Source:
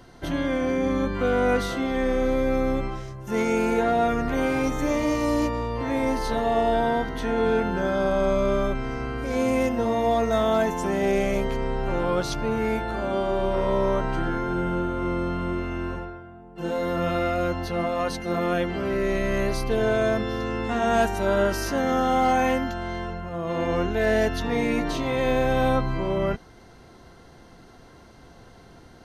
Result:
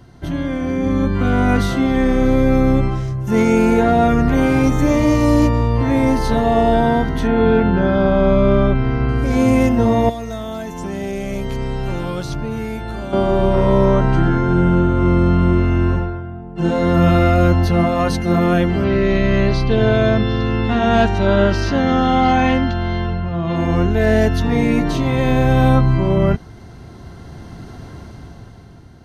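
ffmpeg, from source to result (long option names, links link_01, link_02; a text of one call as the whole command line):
ffmpeg -i in.wav -filter_complex "[0:a]asettb=1/sr,asplit=3[link_01][link_02][link_03];[link_01]atrim=end=7.274[link_04];[link_02]atrim=start=7.27:end=9.09,asetpts=PTS-STARTPTS,afade=type=in:duration=0.004:curve=qsin,afade=type=out:start_time=1.816:duration=0.004:curve=qsin,lowpass=frequency=4400:width=0.5412,lowpass=frequency=4400:width=1.3066[link_05];[link_03]atrim=start=9.086[link_06];[link_04][link_05]acrossfade=duration=0.004:curve1=hsin:curve2=qsin[link_07];[link_07][link_06]acrossfade=duration=0.004:curve1=qsin:curve2=hsin,asettb=1/sr,asplit=3[link_08][link_09][link_10];[link_08]atrim=end=10.094[link_11];[link_09]atrim=start=10.09:end=13.13,asetpts=PTS-STARTPTS,afade=type=in:duration=0.004:curve=qsin,afade=type=out:start_time=3.036:duration=0.004:curve=qsin,acrossover=split=2600|7500[link_12][link_13][link_14];[link_12]acompressor=threshold=-36dB:ratio=4[link_15];[link_13]acompressor=threshold=-49dB:ratio=4[link_16];[link_14]acompressor=threshold=-58dB:ratio=4[link_17];[link_15][link_16][link_17]amix=inputs=3:normalize=0[link_18];[link_10]atrim=start=13.126[link_19];[link_11][link_18]acrossfade=duration=0.004:curve1=hsin:curve2=qsin[link_20];[link_20][link_19]acrossfade=duration=0.004:curve1=qsin:curve2=hsin,asettb=1/sr,asplit=3[link_21][link_22][link_23];[link_21]atrim=end=13.854[link_24];[link_22]atrim=start=13.85:end=16.94,asetpts=PTS-STARTPTS,afade=type=in:duration=0.004:curve=qsin,afade=type=out:start_time=3.086:duration=0.004:curve=qsin,lowpass=8300[link_25];[link_23]atrim=start=16.936[link_26];[link_24][link_25]acrossfade=duration=0.004:curve1=hsin:curve2=qsin[link_27];[link_27][link_26]acrossfade=duration=0.004:curve1=qsin:curve2=hsin,asettb=1/sr,asplit=3[link_28][link_29][link_30];[link_28]atrim=end=18.844[link_31];[link_29]atrim=start=18.84:end=23.56,asetpts=PTS-STARTPTS,afade=type=in:duration=0.004:curve=qsin,afade=type=out:start_time=4.716:duration=0.004:curve=qsin,lowpass=frequency=3900:width_type=q:width=1.8[link_32];[link_30]atrim=start=23.556[link_33];[link_31][link_32]acrossfade=duration=0.004:curve1=hsin:curve2=qsin[link_34];[link_34][link_33]acrossfade=duration=0.004:curve1=qsin:curve2=hsin,equalizer=frequency=100:width=0.53:gain=12,bandreject=frequency=500:width=12,dynaudnorm=framelen=160:gausssize=13:maxgain=11.5dB,volume=-1dB" out.wav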